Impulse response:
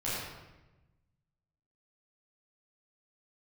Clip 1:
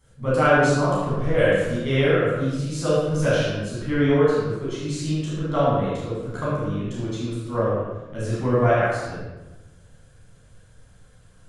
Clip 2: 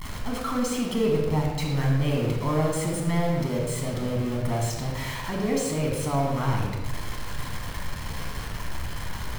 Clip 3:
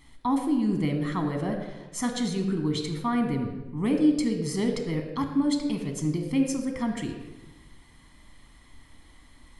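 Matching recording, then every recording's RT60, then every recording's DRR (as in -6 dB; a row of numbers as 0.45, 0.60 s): 1; 1.1, 1.1, 1.1 s; -10.0, -1.5, 4.0 dB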